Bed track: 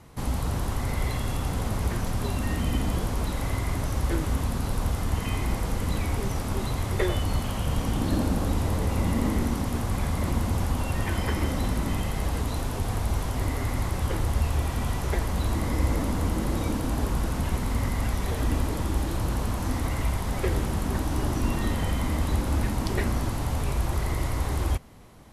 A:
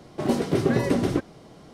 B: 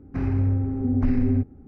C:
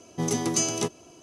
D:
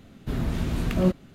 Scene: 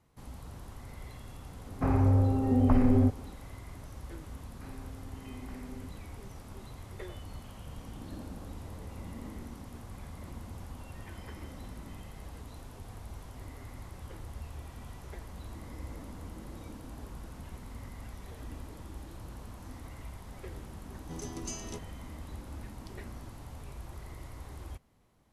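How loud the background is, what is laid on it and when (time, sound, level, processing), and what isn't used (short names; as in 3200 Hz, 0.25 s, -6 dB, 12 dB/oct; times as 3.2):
bed track -18 dB
1.67 add B -2 dB + band shelf 770 Hz +10.5 dB
4.46 add B -12 dB + HPF 840 Hz 6 dB/oct
20.91 add C -16 dB
not used: A, D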